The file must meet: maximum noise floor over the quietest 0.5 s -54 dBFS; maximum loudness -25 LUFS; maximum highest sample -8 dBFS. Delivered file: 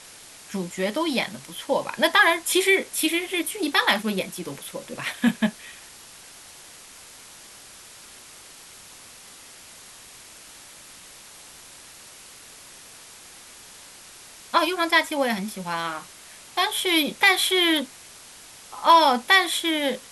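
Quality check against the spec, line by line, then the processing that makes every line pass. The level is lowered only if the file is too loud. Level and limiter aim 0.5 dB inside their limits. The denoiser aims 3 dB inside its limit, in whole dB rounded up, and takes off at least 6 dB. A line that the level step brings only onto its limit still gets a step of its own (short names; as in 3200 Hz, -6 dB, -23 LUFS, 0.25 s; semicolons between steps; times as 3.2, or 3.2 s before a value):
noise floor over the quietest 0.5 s -46 dBFS: fail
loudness -22.0 LUFS: fail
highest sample -4.5 dBFS: fail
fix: denoiser 8 dB, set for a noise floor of -46 dBFS; gain -3.5 dB; limiter -8.5 dBFS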